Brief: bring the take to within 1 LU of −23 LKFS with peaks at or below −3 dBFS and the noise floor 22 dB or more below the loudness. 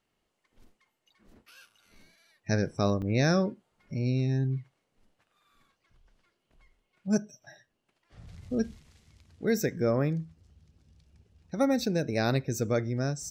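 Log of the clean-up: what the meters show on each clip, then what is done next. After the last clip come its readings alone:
number of dropouts 1; longest dropout 5.6 ms; integrated loudness −29.5 LKFS; sample peak −13.5 dBFS; target loudness −23.0 LKFS
→ repair the gap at 0:03.02, 5.6 ms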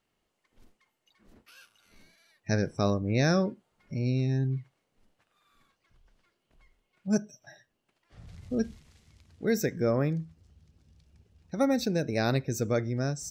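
number of dropouts 0; integrated loudness −29.5 LKFS; sample peak −13.5 dBFS; target loudness −23.0 LKFS
→ level +6.5 dB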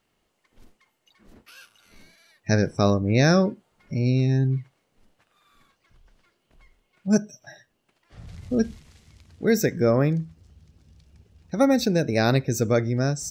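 integrated loudness −23.0 LKFS; sample peak −7.0 dBFS; background noise floor −73 dBFS

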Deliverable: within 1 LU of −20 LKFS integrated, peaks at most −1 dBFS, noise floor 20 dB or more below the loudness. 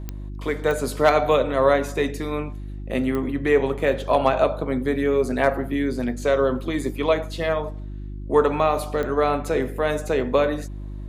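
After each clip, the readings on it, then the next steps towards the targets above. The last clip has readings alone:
number of clicks 4; mains hum 50 Hz; hum harmonics up to 350 Hz; level of the hum −30 dBFS; integrated loudness −22.5 LKFS; sample peak −4.0 dBFS; target loudness −20.0 LKFS
→ click removal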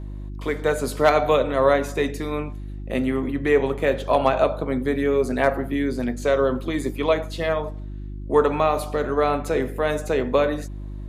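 number of clicks 0; mains hum 50 Hz; hum harmonics up to 350 Hz; level of the hum −30 dBFS
→ hum removal 50 Hz, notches 7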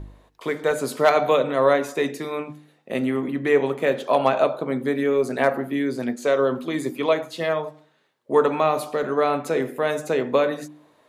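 mains hum none found; integrated loudness −22.5 LKFS; sample peak −4.0 dBFS; target loudness −20.0 LKFS
→ level +2.5 dB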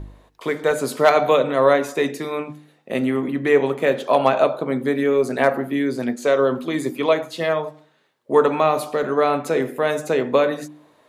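integrated loudness −20.0 LKFS; sample peak −1.5 dBFS; background noise floor −59 dBFS

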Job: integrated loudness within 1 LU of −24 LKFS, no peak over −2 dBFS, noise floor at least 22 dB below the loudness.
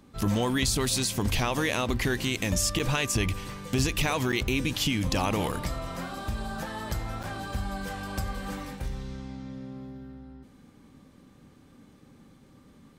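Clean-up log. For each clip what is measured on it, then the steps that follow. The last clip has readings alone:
number of dropouts 4; longest dropout 6.7 ms; integrated loudness −29.0 LKFS; sample peak −9.5 dBFS; target loudness −24.0 LKFS
→ repair the gap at 0:02.79/0:04.32/0:05.52/0:07.23, 6.7 ms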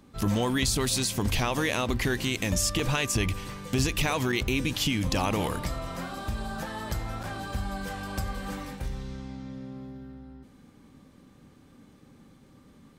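number of dropouts 0; integrated loudness −29.0 LKFS; sample peak −9.5 dBFS; target loudness −24.0 LKFS
→ level +5 dB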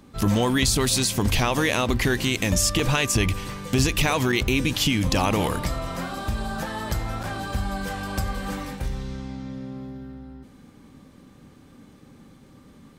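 integrated loudness −24.0 LKFS; sample peak −4.5 dBFS; background noise floor −51 dBFS

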